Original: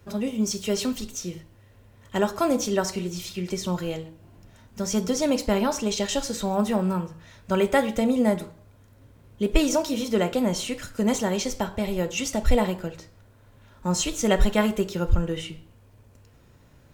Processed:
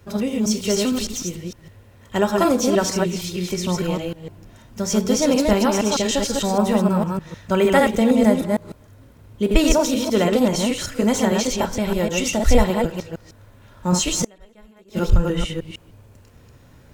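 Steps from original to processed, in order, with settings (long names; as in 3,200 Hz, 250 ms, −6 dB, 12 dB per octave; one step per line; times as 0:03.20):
delay that plays each chunk backwards 153 ms, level −2.5 dB
0:14.24–0:14.99: gate with flip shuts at −14 dBFS, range −33 dB
level +4 dB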